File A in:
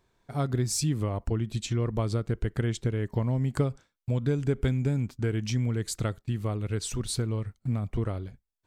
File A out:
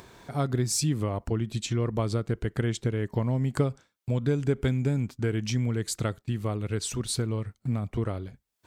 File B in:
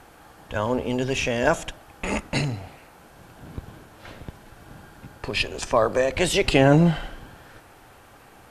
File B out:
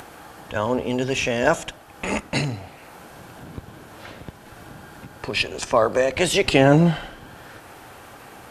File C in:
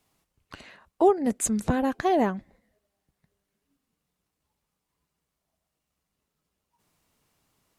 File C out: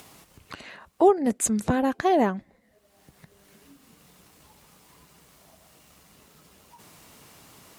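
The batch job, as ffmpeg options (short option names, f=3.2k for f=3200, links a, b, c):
-af "highpass=f=96:p=1,acompressor=mode=upward:threshold=-37dB:ratio=2.5,volume=2dB"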